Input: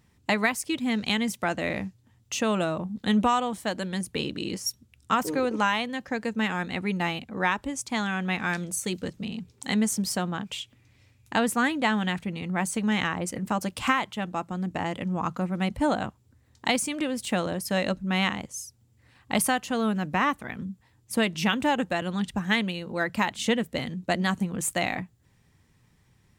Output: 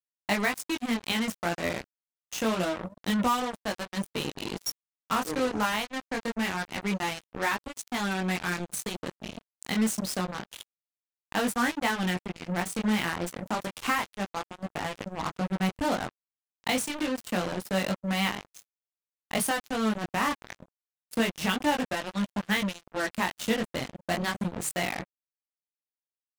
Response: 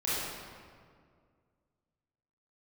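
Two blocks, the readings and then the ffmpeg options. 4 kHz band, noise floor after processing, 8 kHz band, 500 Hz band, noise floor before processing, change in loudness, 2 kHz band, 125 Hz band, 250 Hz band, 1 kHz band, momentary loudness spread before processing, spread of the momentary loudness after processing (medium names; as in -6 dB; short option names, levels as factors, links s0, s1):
-2.0 dB, under -85 dBFS, -3.0 dB, -2.5 dB, -63 dBFS, -2.5 dB, -2.5 dB, -3.5 dB, -3.0 dB, -2.5 dB, 8 LU, 8 LU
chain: -af "flanger=delay=19.5:depth=4:speed=0.27,acrusher=bits=4:mix=0:aa=0.5"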